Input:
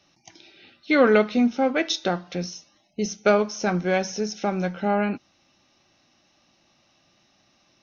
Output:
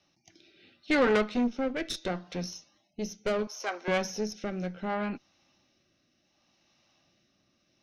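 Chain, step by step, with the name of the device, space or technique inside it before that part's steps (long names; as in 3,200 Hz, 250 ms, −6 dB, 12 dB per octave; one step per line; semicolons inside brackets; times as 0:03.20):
overdriven rotary cabinet (tube saturation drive 18 dB, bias 0.75; rotating-speaker cabinet horn 0.7 Hz)
0:03.47–0:03.88: Bessel high-pass filter 560 Hz, order 8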